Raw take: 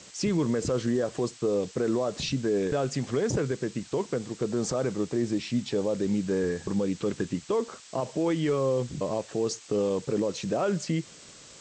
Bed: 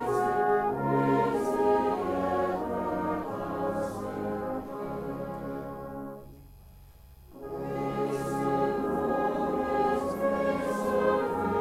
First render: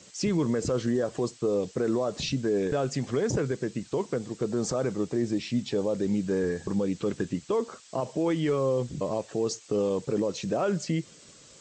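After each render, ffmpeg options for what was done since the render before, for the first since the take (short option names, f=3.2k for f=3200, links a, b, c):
-af "afftdn=nr=6:nf=-50"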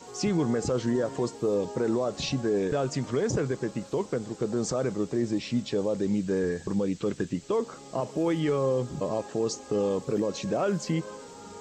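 -filter_complex "[1:a]volume=-16.5dB[a];[0:a][a]amix=inputs=2:normalize=0"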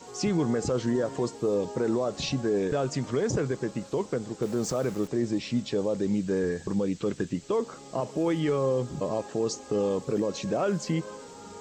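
-filter_complex "[0:a]asettb=1/sr,asplit=3[a][b][c];[a]atrim=end=4.424[d];[b]atrim=start=4.42:end=5.08,asetpts=PTS-STARTPTS,afade=t=in:d=0.004:c=qsin,afade=t=out:st=0.656:d=0.004:c=qsin,aeval=exprs='val(0)*gte(abs(val(0)),0.00891)':c=same[e];[c]atrim=start=5.076[f];[d][e]acrossfade=d=0.004:c1=hsin:c2=qsin[g];[g][f]acrossfade=d=0.004:c1=qsin:c2=hsin"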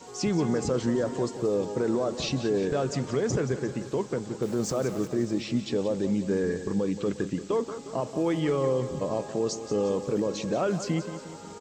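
-af "aecho=1:1:178|356|534|712|890|1068:0.251|0.136|0.0732|0.0396|0.0214|0.0115"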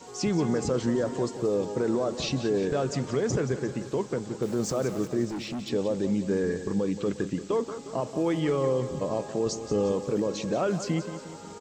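-filter_complex "[0:a]asplit=3[a][b][c];[a]afade=t=out:st=5.28:d=0.02[d];[b]volume=30.5dB,asoftclip=hard,volume=-30.5dB,afade=t=in:st=5.28:d=0.02,afade=t=out:st=5.68:d=0.02[e];[c]afade=t=in:st=5.68:d=0.02[f];[d][e][f]amix=inputs=3:normalize=0,asettb=1/sr,asplit=3[g][h][i];[g]atrim=end=9.464[j];[h]atrim=start=9.46:end=9.93,asetpts=PTS-STARTPTS,afade=t=in:d=0.004:c=qsin,afade=t=out:st=0.466:d=0.004:c=qsin,lowshelf=f=95:g=11[k];[i]atrim=start=9.926[l];[j][k]acrossfade=d=0.004:c1=hsin:c2=qsin[m];[m][l]acrossfade=d=0.004:c1=qsin:c2=hsin"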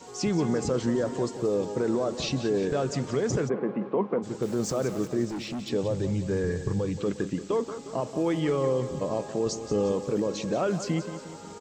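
-filter_complex "[0:a]asplit=3[a][b][c];[a]afade=t=out:st=3.48:d=0.02[d];[b]highpass=f=180:w=0.5412,highpass=f=180:w=1.3066,equalizer=f=200:t=q:w=4:g=8,equalizer=f=500:t=q:w=4:g=4,equalizer=f=740:t=q:w=4:g=6,equalizer=f=1.1k:t=q:w=4:g=8,equalizer=f=1.6k:t=q:w=4:g=-5,lowpass=f=2.4k:w=0.5412,lowpass=f=2.4k:w=1.3066,afade=t=in:st=3.48:d=0.02,afade=t=out:st=4.22:d=0.02[e];[c]afade=t=in:st=4.22:d=0.02[f];[d][e][f]amix=inputs=3:normalize=0,asettb=1/sr,asplit=3[g][h][i];[g]atrim=end=5.834[j];[h]atrim=start=5.83:end=7,asetpts=PTS-STARTPTS,afade=t=in:d=0.004:c=qsin,afade=t=out:st=1.166:d=0.004:c=qsin,lowshelf=f=170:t=q:w=3:g=7.5[k];[i]atrim=start=6.996[l];[j][k]acrossfade=d=0.004:c1=hsin:c2=qsin[m];[m][l]acrossfade=d=0.004:c1=qsin:c2=hsin"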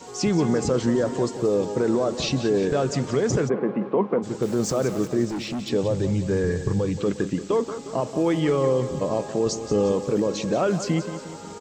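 -af "volume=4.5dB"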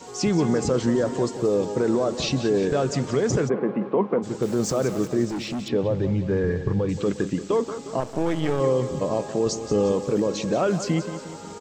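-filter_complex "[0:a]asettb=1/sr,asplit=3[a][b][c];[a]atrim=end=5.684[d];[b]atrim=start=5.68:end=6.89,asetpts=PTS-STARTPTS,afade=t=in:d=0.004:c=qsin,afade=t=out:st=1.206:d=0.004:c=qsin,lowpass=3k[e];[c]atrim=start=6.886[f];[d][e]acrossfade=d=0.004:c1=hsin:c2=qsin[g];[g][f]acrossfade=d=0.004:c1=qsin:c2=hsin,asettb=1/sr,asplit=3[h][i][j];[h]atrim=end=8.004[k];[i]atrim=start=8:end=8.6,asetpts=PTS-STARTPTS,afade=t=in:d=0.004:c=qsin,afade=t=out:st=0.596:d=0.004:c=qsin,aeval=exprs='if(lt(val(0),0),0.251*val(0),val(0))':c=same[l];[j]atrim=start=8.596[m];[k][l]acrossfade=d=0.004:c1=hsin:c2=qsin[n];[n][m]acrossfade=d=0.004:c1=qsin:c2=hsin"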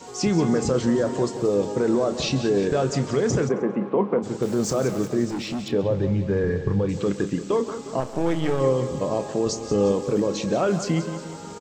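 -filter_complex "[0:a]asplit=2[a][b];[b]adelay=30,volume=-12.5dB[c];[a][c]amix=inputs=2:normalize=0,aecho=1:1:135|270|405:0.112|0.0348|0.0108"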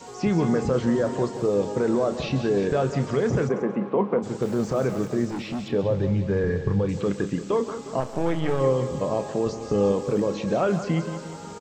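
-filter_complex "[0:a]acrossover=split=3000[a][b];[b]acompressor=threshold=-46dB:ratio=4:attack=1:release=60[c];[a][c]amix=inputs=2:normalize=0,equalizer=f=320:t=o:w=0.66:g=-3"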